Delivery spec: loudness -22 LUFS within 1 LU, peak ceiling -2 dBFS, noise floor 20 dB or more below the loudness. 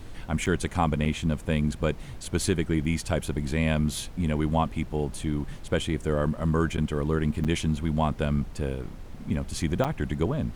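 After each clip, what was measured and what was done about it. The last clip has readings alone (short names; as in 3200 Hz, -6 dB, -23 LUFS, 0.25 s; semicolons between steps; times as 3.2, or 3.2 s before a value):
dropouts 5; longest dropout 7.4 ms; noise floor -41 dBFS; noise floor target -48 dBFS; loudness -28.0 LUFS; peak -10.5 dBFS; loudness target -22.0 LUFS
-> interpolate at 0.46/1.05/6.77/7.44/9.84, 7.4 ms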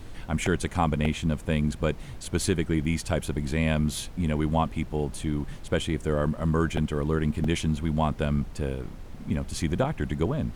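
dropouts 0; noise floor -41 dBFS; noise floor target -48 dBFS
-> noise print and reduce 7 dB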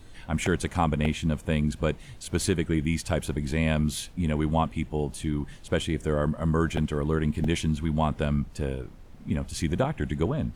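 noise floor -47 dBFS; noise floor target -48 dBFS
-> noise print and reduce 6 dB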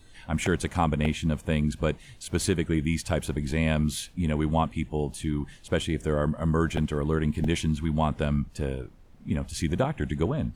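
noise floor -51 dBFS; loudness -28.0 LUFS; peak -10.5 dBFS; loudness target -22.0 LUFS
-> gain +6 dB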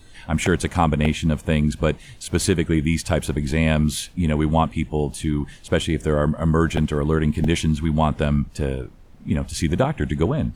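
loudness -22.0 LUFS; peak -4.5 dBFS; noise floor -45 dBFS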